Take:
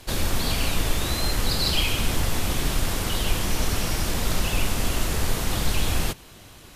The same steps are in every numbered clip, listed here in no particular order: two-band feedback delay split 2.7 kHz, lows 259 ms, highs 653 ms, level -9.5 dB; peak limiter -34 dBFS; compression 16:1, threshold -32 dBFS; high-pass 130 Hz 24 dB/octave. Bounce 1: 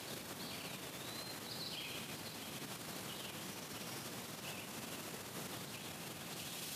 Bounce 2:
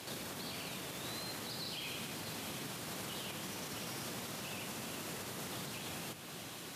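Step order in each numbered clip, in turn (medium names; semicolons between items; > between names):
two-band feedback delay > compression > peak limiter > high-pass; compression > high-pass > peak limiter > two-band feedback delay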